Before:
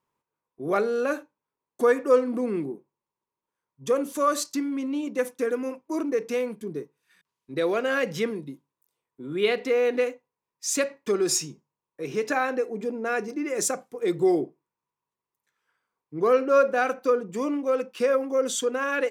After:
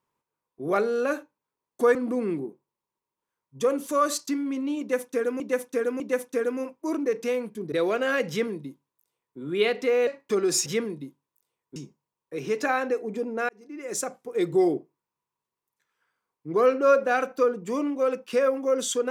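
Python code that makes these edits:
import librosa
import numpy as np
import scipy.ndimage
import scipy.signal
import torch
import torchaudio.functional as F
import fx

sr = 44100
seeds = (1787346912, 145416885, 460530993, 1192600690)

y = fx.edit(x, sr, fx.cut(start_s=1.95, length_s=0.26),
    fx.repeat(start_s=5.06, length_s=0.6, count=3),
    fx.cut(start_s=6.78, length_s=0.77),
    fx.duplicate(start_s=8.12, length_s=1.1, to_s=11.43),
    fx.cut(start_s=9.9, length_s=0.94),
    fx.fade_in_span(start_s=13.16, length_s=0.79), tone=tone)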